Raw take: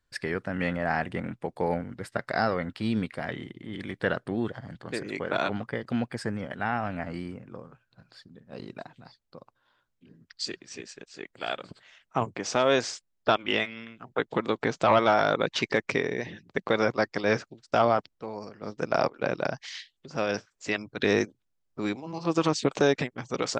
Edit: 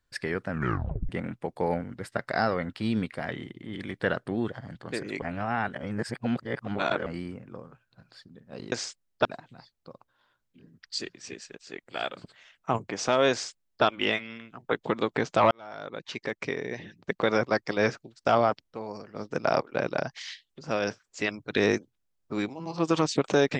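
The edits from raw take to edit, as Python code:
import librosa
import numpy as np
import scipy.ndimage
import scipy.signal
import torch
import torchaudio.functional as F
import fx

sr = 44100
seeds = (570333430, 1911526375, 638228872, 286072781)

y = fx.edit(x, sr, fx.tape_stop(start_s=0.49, length_s=0.6),
    fx.reverse_span(start_s=5.22, length_s=1.84),
    fx.duplicate(start_s=12.78, length_s=0.53, to_s=8.72),
    fx.fade_in_span(start_s=14.98, length_s=1.74), tone=tone)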